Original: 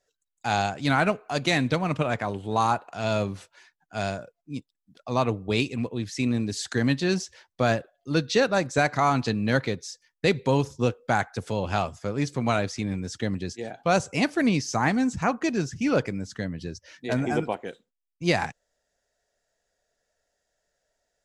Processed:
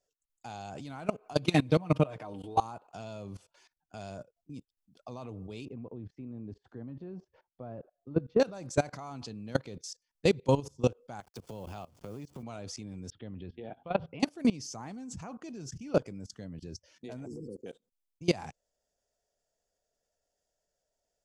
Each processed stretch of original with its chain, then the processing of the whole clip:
1.33–2.60 s: high-pass 94 Hz + peaking EQ 7 kHz -8 dB 0.52 oct + comb 6.5 ms, depth 100%
5.65–8.40 s: de-esser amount 95% + low-pass 1.2 kHz
11.20–12.43 s: send-on-delta sampling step -42.5 dBFS + high-pass 53 Hz + compression 10:1, threshold -35 dBFS
13.10–14.20 s: elliptic low-pass 3.5 kHz, stop band 50 dB + peaking EQ 71 Hz +3.5 dB 0.97 oct + de-hum 81.38 Hz, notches 3
17.26–17.66 s: brick-wall FIR band-stop 520–4300 Hz + compression 3:1, threshold -27 dBFS
whole clip: peaking EQ 1.8 kHz -10 dB 0.93 oct; band-stop 3.9 kHz, Q 11; level held to a coarse grid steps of 21 dB

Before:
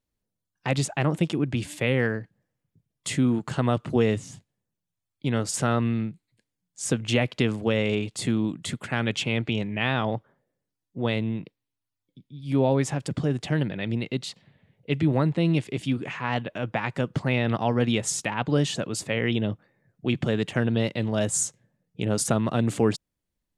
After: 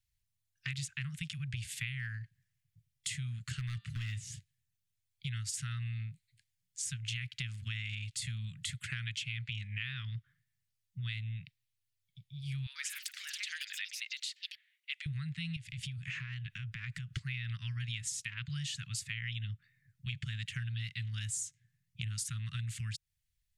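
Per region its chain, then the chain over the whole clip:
3.53–4.22 s: hard clipper -15 dBFS + de-hum 198.9 Hz, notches 24
12.66–15.06 s: high-pass 1 kHz 24 dB/octave + ever faster or slower copies 96 ms, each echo +5 st, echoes 3, each echo -6 dB
15.56–17.15 s: bass shelf 420 Hz +6.5 dB + compression 8:1, threshold -31 dBFS
whole clip: inverse Chebyshev band-stop 300–780 Hz, stop band 60 dB; compression 6:1, threshold -38 dBFS; trim +1.5 dB

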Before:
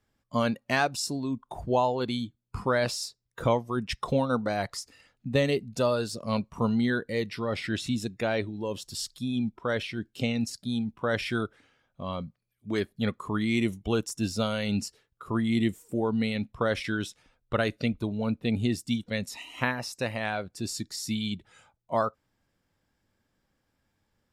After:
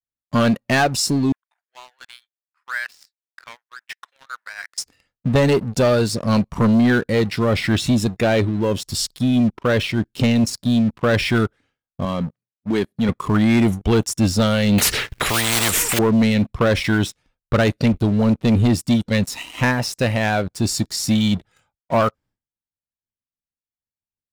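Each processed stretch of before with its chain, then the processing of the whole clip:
1.32–4.78 s: companding laws mixed up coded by A + ladder high-pass 1.5 kHz, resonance 60% + treble shelf 3.6 kHz -9.5 dB
12.05–13.09 s: Chebyshev high-pass 160 Hz + compression 1.5:1, threshold -33 dBFS + tape noise reduction on one side only decoder only
14.78–15.99 s: block-companded coder 7-bit + peaking EQ 2.1 kHz +13.5 dB 1.7 oct + spectrum-flattening compressor 10:1
whole clip: bass shelf 220 Hz +7 dB; expander -54 dBFS; waveshaping leveller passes 3

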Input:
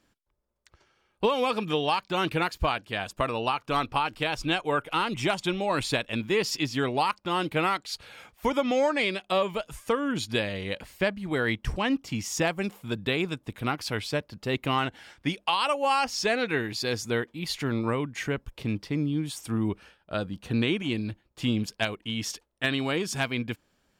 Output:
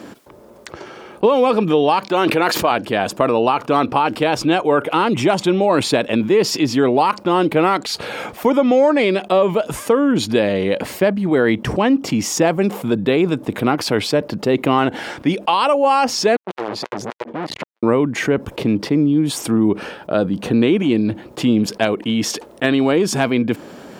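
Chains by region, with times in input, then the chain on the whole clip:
2.08–2.71 s: high-pass 420 Hz 6 dB/octave + decay stretcher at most 30 dB/s
16.36–17.83 s: low-pass 1.3 kHz 6 dB/octave + hard clipper -33 dBFS + transformer saturation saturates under 1.2 kHz
whole clip: Bessel high-pass 350 Hz, order 2; tilt shelf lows +9.5 dB, about 870 Hz; level flattener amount 50%; trim +7 dB

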